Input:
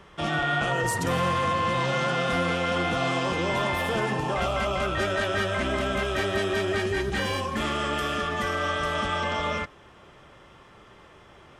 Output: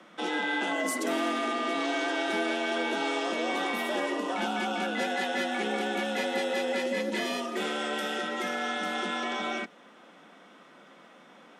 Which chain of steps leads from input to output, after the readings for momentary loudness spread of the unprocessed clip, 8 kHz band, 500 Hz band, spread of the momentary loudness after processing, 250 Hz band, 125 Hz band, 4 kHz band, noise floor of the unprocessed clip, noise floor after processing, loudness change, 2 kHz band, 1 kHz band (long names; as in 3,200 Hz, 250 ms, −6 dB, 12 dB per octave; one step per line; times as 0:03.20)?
3 LU, −2.0 dB, −3.5 dB, 3 LU, −1.0 dB, below −20 dB, −2.5 dB, −52 dBFS, −54 dBFS, −3.5 dB, −3.0 dB, −4.5 dB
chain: dynamic equaliser 1,000 Hz, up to −5 dB, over −40 dBFS, Q 1.3
frequency shifter +150 Hz
level −2.5 dB